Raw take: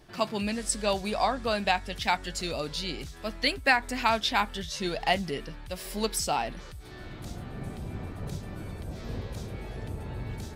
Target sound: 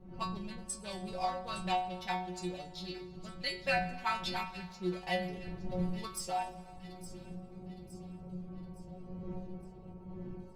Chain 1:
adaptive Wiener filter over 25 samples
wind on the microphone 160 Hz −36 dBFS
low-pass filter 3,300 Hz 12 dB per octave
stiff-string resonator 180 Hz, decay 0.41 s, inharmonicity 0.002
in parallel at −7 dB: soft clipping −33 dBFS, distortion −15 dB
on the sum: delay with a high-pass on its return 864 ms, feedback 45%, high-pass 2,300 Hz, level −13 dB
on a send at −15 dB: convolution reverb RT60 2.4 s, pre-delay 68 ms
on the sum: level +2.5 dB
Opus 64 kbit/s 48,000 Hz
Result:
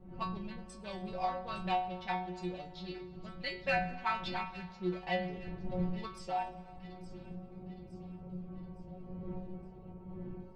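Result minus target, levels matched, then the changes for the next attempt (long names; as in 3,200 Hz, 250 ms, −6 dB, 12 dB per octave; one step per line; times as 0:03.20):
4,000 Hz band −4.0 dB
remove: low-pass filter 3,300 Hz 12 dB per octave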